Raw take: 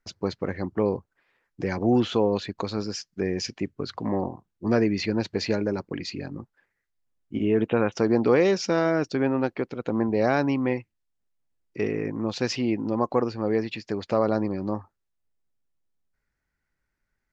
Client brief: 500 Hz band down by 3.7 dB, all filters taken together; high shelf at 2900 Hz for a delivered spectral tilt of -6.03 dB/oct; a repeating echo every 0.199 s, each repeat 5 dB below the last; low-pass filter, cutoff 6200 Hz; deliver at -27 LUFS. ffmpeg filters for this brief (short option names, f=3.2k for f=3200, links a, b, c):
-af "lowpass=6.2k,equalizer=f=500:t=o:g=-4.5,highshelf=f=2.9k:g=-5,aecho=1:1:199|398|597|796|995|1194|1393:0.562|0.315|0.176|0.0988|0.0553|0.031|0.0173"